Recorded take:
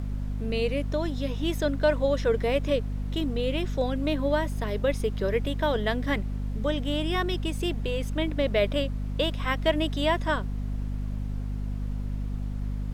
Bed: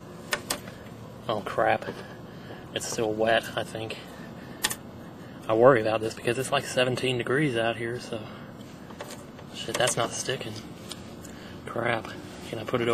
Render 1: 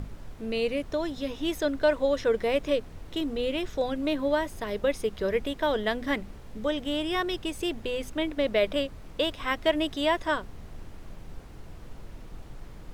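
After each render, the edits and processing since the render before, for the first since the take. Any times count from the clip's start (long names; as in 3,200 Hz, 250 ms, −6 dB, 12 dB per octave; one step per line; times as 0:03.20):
mains-hum notches 50/100/150/200/250 Hz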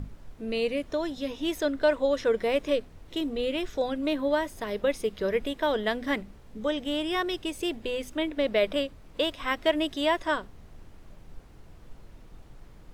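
noise reduction from a noise print 6 dB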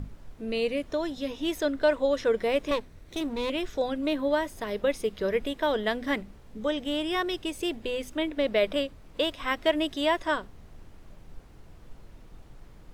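0:02.71–0:03.50: lower of the sound and its delayed copy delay 0.5 ms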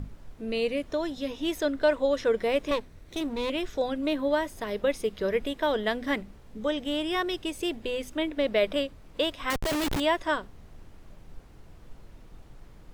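0:09.50–0:10.00: comparator with hysteresis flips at −40 dBFS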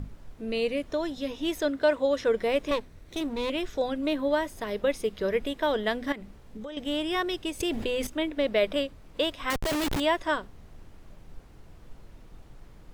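0:01.70–0:02.24: high-pass filter 91 Hz → 40 Hz
0:06.12–0:06.77: downward compressor 8 to 1, threshold −35 dBFS
0:07.60–0:08.07: envelope flattener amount 70%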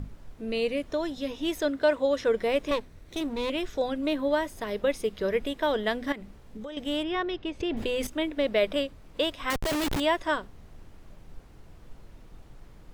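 0:07.03–0:07.77: high-frequency loss of the air 210 metres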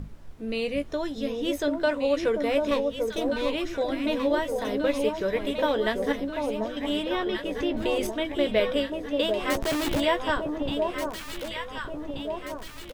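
double-tracking delay 14 ms −9.5 dB
delay that swaps between a low-pass and a high-pass 741 ms, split 1,000 Hz, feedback 73%, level −3.5 dB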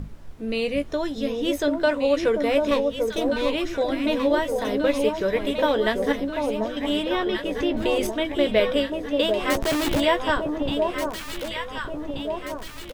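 level +3.5 dB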